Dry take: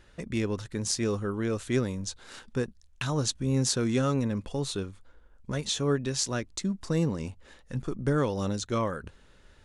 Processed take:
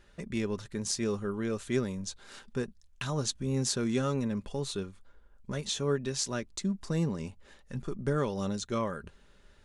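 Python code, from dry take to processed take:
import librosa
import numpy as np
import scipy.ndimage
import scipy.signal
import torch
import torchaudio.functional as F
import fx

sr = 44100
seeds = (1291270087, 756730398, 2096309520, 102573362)

y = x + 0.32 * np.pad(x, (int(5.0 * sr / 1000.0), 0))[:len(x)]
y = F.gain(torch.from_numpy(y), -3.5).numpy()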